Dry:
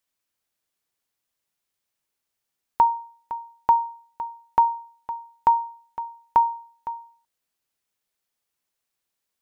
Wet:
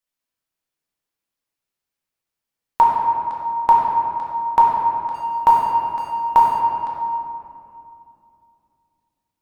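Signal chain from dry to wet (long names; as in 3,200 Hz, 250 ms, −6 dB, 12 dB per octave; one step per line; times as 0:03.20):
0:05.14–0:06.59: mu-law and A-law mismatch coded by mu
noise gate −51 dBFS, range −10 dB
convolution reverb RT60 2.7 s, pre-delay 6 ms, DRR −4 dB
level +3 dB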